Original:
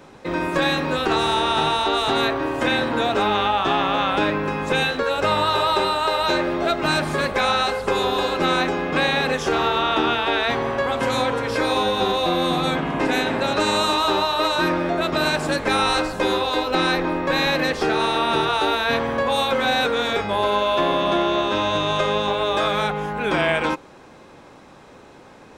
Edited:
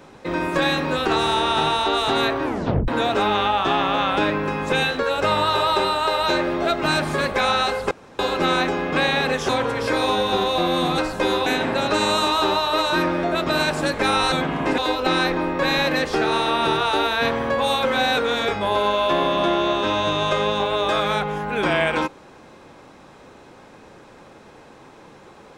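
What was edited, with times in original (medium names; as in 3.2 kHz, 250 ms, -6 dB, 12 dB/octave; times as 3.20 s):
2.45 s: tape stop 0.43 s
7.91–8.19 s: room tone
9.49–11.17 s: delete
12.66–13.12 s: swap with 15.98–16.46 s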